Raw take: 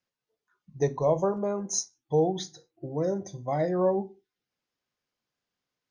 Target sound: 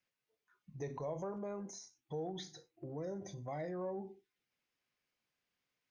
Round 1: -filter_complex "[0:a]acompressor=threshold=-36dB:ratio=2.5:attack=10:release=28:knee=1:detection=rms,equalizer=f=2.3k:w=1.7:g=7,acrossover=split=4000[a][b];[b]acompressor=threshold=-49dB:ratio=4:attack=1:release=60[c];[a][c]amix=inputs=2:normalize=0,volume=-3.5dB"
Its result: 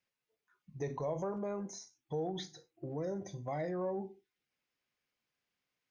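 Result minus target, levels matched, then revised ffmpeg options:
compressor: peak gain reduction -4 dB
-filter_complex "[0:a]acompressor=threshold=-43dB:ratio=2.5:attack=10:release=28:knee=1:detection=rms,equalizer=f=2.3k:w=1.7:g=7,acrossover=split=4000[a][b];[b]acompressor=threshold=-49dB:ratio=4:attack=1:release=60[c];[a][c]amix=inputs=2:normalize=0,volume=-3.5dB"

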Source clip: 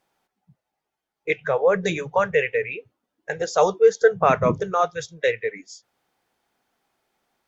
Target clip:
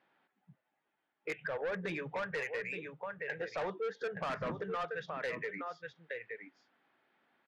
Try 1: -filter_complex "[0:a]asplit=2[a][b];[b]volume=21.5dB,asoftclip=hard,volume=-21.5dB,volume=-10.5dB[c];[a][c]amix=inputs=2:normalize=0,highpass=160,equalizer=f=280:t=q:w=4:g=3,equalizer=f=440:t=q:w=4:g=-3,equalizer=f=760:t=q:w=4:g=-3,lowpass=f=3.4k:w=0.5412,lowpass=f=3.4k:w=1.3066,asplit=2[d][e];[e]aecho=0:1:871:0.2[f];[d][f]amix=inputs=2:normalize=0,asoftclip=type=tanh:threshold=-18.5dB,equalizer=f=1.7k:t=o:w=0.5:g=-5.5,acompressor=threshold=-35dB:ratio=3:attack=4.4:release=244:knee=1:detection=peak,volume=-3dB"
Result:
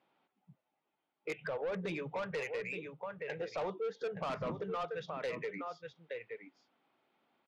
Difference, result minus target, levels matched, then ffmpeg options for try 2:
overloaded stage: distortion +9 dB; 2000 Hz band -4.0 dB
-filter_complex "[0:a]asplit=2[a][b];[b]volume=12.5dB,asoftclip=hard,volume=-12.5dB,volume=-10.5dB[c];[a][c]amix=inputs=2:normalize=0,highpass=160,equalizer=f=280:t=q:w=4:g=3,equalizer=f=440:t=q:w=4:g=-3,equalizer=f=760:t=q:w=4:g=-3,lowpass=f=3.4k:w=0.5412,lowpass=f=3.4k:w=1.3066,asplit=2[d][e];[e]aecho=0:1:871:0.2[f];[d][f]amix=inputs=2:normalize=0,asoftclip=type=tanh:threshold=-18.5dB,equalizer=f=1.7k:t=o:w=0.5:g=5.5,acompressor=threshold=-35dB:ratio=3:attack=4.4:release=244:knee=1:detection=peak,volume=-3dB"

